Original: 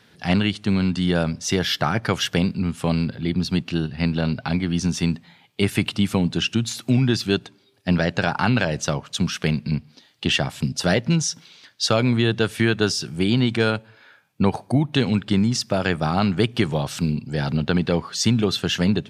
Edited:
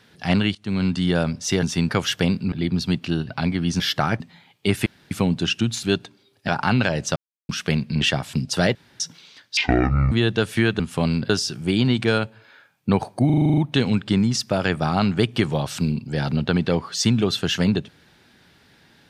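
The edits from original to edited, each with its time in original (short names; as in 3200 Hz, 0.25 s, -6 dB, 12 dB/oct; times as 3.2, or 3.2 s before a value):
0.55–0.85 fade in linear, from -19.5 dB
1.63–2.03 swap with 4.88–5.14
2.66–3.16 move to 12.82
3.93–4.37 cut
5.8–6.05 room tone
6.77–7.24 cut
7.89–8.24 cut
8.92–9.25 mute
9.77–10.28 cut
11.02–11.27 room tone
11.84–12.14 speed 55%
14.78 stutter 0.04 s, 9 plays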